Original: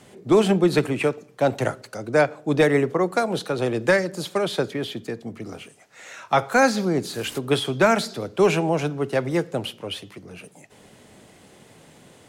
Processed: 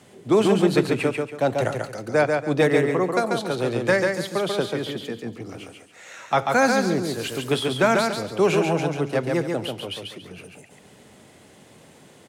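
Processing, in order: high-pass 51 Hz; on a send: feedback delay 140 ms, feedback 29%, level -4 dB; on the sum: trim -1.5 dB

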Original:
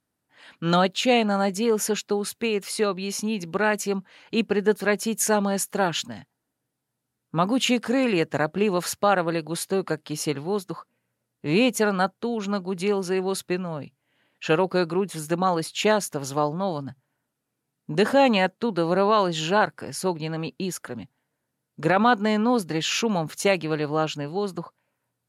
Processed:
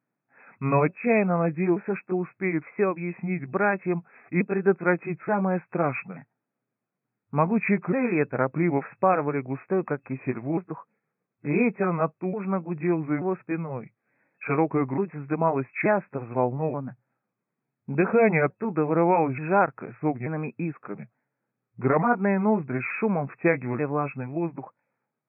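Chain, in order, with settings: sawtooth pitch modulation -4.5 st, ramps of 881 ms; FFT band-pass 110–2600 Hz

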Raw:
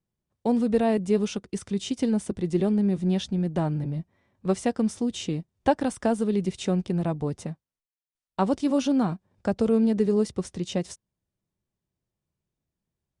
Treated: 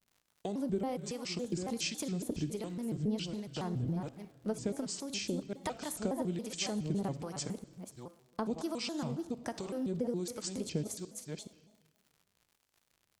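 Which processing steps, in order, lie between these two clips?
chunks repeated in reverse 425 ms, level -10.5 dB; tone controls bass -2 dB, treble +9 dB; compression, threshold -30 dBFS, peak gain reduction 14 dB; harmonic tremolo 1.3 Hz, depth 70%, crossover 720 Hz; crackle 120 per s -54 dBFS; on a send at -13 dB: reverberation RT60 1.4 s, pre-delay 30 ms; on the sum: vibrato with a chosen wave square 3.6 Hz, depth 250 cents

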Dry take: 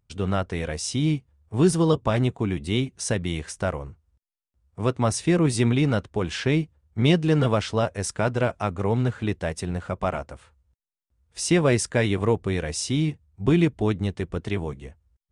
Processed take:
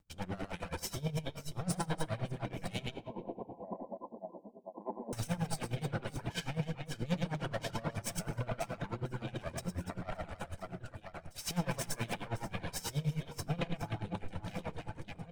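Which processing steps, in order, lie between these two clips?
comb filter that takes the minimum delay 1.3 ms; reverse bouncing-ball echo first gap 110 ms, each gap 1.6×, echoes 5; hard clipper -17 dBFS, distortion -17 dB; transient shaper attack -11 dB, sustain +8 dB; 2.94–5.13 s: brick-wall FIR band-pass 190–1100 Hz; compression 2.5:1, threshold -41 dBFS, peak gain reduction 15 dB; reverb removal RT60 1.3 s; saturation -23.5 dBFS, distortion -36 dB; simulated room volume 1400 m³, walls mixed, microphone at 0.76 m; logarithmic tremolo 9.4 Hz, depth 19 dB; trim +5.5 dB

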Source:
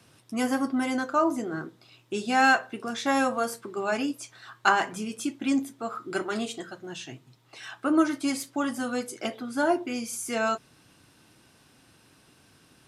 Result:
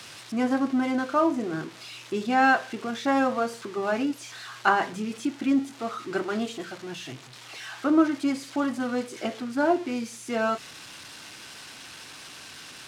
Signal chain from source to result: zero-crossing glitches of -22 dBFS; tape spacing loss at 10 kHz 25 dB; trim +3 dB

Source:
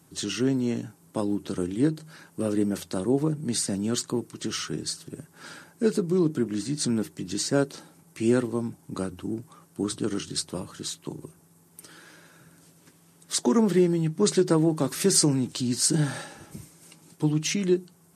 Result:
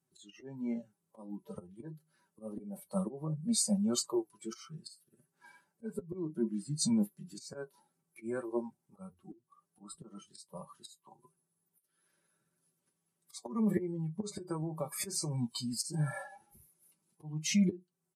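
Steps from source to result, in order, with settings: spectral noise reduction 23 dB; comb 5.2 ms, depth 56%; slow attack 384 ms; 13.84–15.63 s: compression 10:1, threshold -28 dBFS, peak gain reduction 9 dB; flange 1.5 Hz, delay 7.4 ms, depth 2.7 ms, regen +39%

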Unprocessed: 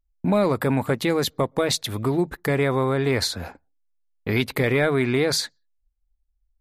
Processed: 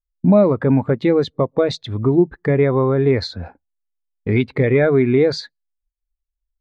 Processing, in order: in parallel at -3 dB: compression, threshold -29 dBFS, peak gain reduction 12.5 dB; on the sum: distance through air 100 m; spectral contrast expander 1.5:1; trim +5 dB

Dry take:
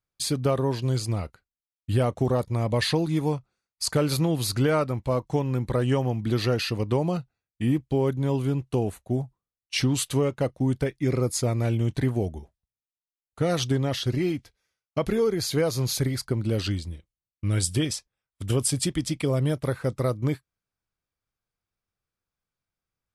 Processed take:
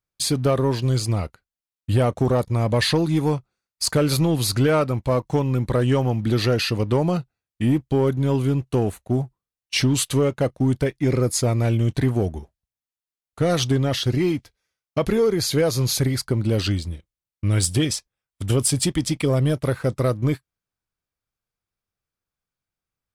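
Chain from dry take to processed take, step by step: waveshaping leveller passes 1; trim +1.5 dB

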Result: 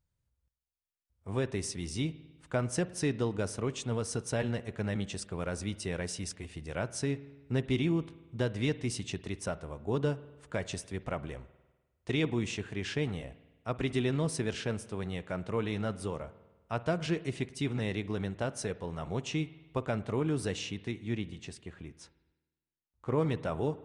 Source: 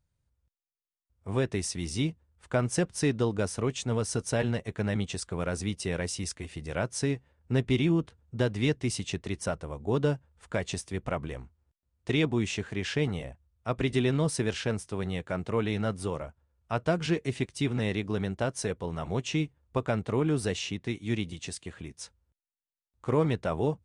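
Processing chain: 20.91–23.18 s: treble shelf 4.1 kHz -9.5 dB; spring tank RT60 1.2 s, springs 50 ms, chirp 35 ms, DRR 16 dB; trim -4 dB

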